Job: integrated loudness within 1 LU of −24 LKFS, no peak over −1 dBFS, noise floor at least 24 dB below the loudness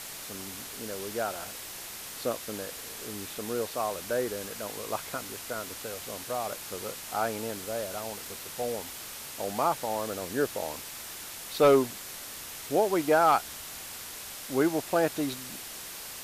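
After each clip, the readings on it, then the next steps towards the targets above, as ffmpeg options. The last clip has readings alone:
background noise floor −42 dBFS; target noise floor −56 dBFS; integrated loudness −31.5 LKFS; sample peak −12.0 dBFS; target loudness −24.0 LKFS
→ -af "afftdn=noise_reduction=14:noise_floor=-42"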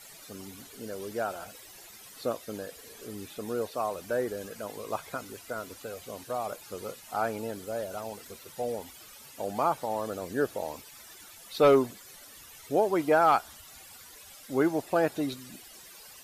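background noise floor −50 dBFS; target noise floor −55 dBFS
→ -af "afftdn=noise_reduction=6:noise_floor=-50"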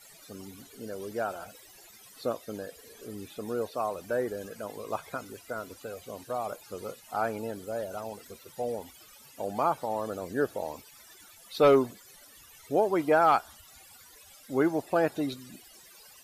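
background noise floor −54 dBFS; target noise floor −55 dBFS
→ -af "afftdn=noise_reduction=6:noise_floor=-54"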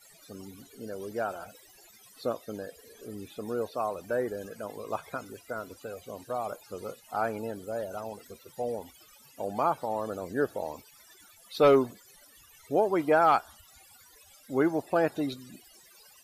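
background noise floor −57 dBFS; integrated loudness −30.5 LKFS; sample peak −12.5 dBFS; target loudness −24.0 LKFS
→ -af "volume=6.5dB"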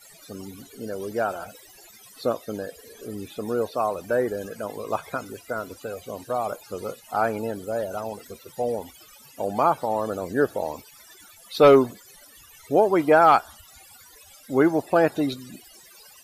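integrated loudness −24.0 LKFS; sample peak −6.0 dBFS; background noise floor −51 dBFS

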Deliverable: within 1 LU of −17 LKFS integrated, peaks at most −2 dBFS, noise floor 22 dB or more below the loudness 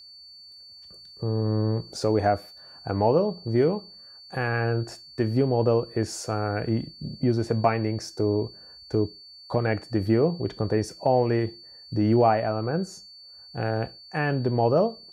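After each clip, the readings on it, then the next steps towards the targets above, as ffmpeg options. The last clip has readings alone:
interfering tone 4,500 Hz; level of the tone −45 dBFS; integrated loudness −25.5 LKFS; sample peak −8.0 dBFS; target loudness −17.0 LKFS
→ -af "bandreject=frequency=4500:width=30"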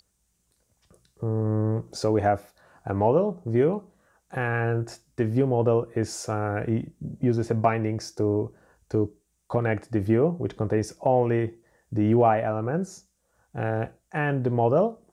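interfering tone none found; integrated loudness −25.5 LKFS; sample peak −8.0 dBFS; target loudness −17.0 LKFS
→ -af "volume=8.5dB,alimiter=limit=-2dB:level=0:latency=1"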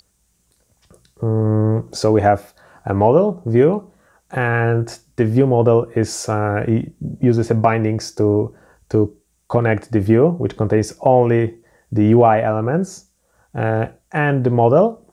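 integrated loudness −17.5 LKFS; sample peak −2.0 dBFS; background noise floor −64 dBFS

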